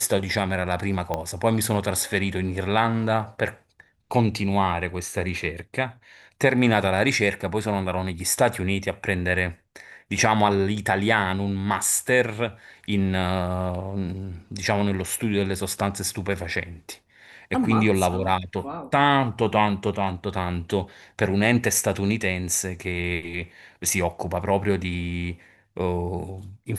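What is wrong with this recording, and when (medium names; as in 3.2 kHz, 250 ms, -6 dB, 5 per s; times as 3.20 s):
1.14 s: pop -13 dBFS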